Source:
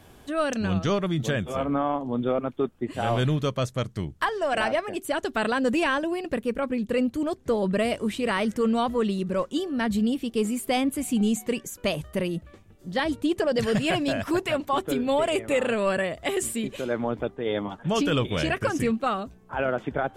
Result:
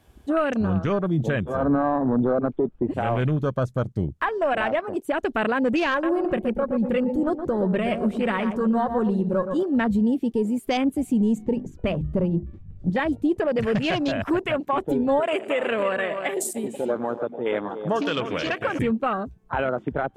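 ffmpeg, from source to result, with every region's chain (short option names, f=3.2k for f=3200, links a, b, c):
-filter_complex "[0:a]asettb=1/sr,asplit=3[a][b][c];[a]atrim=end=1.624[d];[b]atrim=start=1.62:end=2.94,asetpts=PTS-STARTPTS,afade=t=in:d=0.004:c=qsin,afade=t=out:st=1.316:d=0.004:c=qsin,lowpass=f=1.6k:p=1,acompressor=threshold=-33dB:ratio=2:attack=3.2:release=140:knee=1:detection=peak,aeval=exprs='0.112*sin(PI/2*1.78*val(0)/0.112)':c=same[e];[c]atrim=start=2.936[f];[d][e]acrossfade=d=0.004:c1=hsin:c2=qsin[g];[g][f]acrossfade=d=0.004:c1=qsin:c2=hsin,asettb=1/sr,asplit=3[h][i][j];[h]atrim=end=5.914[k];[i]atrim=start=5.91:end=9.63,asetpts=PTS-STARTPTS,afade=t=in:d=0.004:c=qsin,afade=t=out:st=3.716:d=0.004:c=qsin,aecho=1:1:5.5:0.44,atrim=end_sample=164052,asplit=2[l][m];[m]adelay=119,lowpass=f=1.6k:p=1,volume=-7.5dB,asplit=2[n][o];[o]adelay=119,lowpass=f=1.6k:p=1,volume=0.39,asplit=2[p][q];[q]adelay=119,lowpass=f=1.6k:p=1,volume=0.39,asplit=2[r][s];[s]adelay=119,lowpass=f=1.6k:p=1,volume=0.39[t];[l][n][p][r][t]amix=inputs=5:normalize=0,atrim=end_sample=164052[u];[j]atrim=start=9.626[v];[k][u]acrossfade=d=0.004:c1=hsin:c2=qsin[w];[w][v]acrossfade=d=0.004:c1=qsin:c2=hsin,asettb=1/sr,asplit=3[x][y][z];[x]atrim=end=11.384[aa];[y]atrim=start=11.38:end=12.9,asetpts=PTS-STARTPTS,afade=t=in:d=0.004:c=qsin,afade=t=out:st=1.516:d=0.004:c=qsin,lowshelf=f=250:g=10.5,bandreject=f=50:t=h:w=6,bandreject=f=100:t=h:w=6,bandreject=f=150:t=h:w=6,bandreject=f=200:t=h:w=6,bandreject=f=250:t=h:w=6,bandreject=f=300:t=h:w=6,bandreject=f=350:t=h:w=6,adynamicsmooth=sensitivity=3:basefreq=4.3k[ab];[z]atrim=start=12.896[ac];[aa][ab]acrossfade=d=0.004:c1=hsin:c2=qsin[ad];[ad][ac]acrossfade=d=0.004:c1=qsin:c2=hsin,asettb=1/sr,asplit=3[ae][af][ag];[ae]atrim=end=15.204[ah];[af]atrim=start=15.2:end=18.79,asetpts=PTS-STARTPTS,afade=t=in:d=0.004:c=qsin,afade=t=out:st=3.586:d=0.004:c=qsin,highpass=f=440:p=1,aecho=1:1:104|126|299:0.178|0.106|0.335,atrim=end_sample=158319[ai];[ag]atrim=start=18.786[aj];[ah][ai]acrossfade=d=0.004:c1=hsin:c2=qsin[ak];[ak][aj]acrossfade=d=0.004:c1=qsin:c2=hsin,afwtdn=0.02,alimiter=limit=-23dB:level=0:latency=1:release=452,volume=8.5dB"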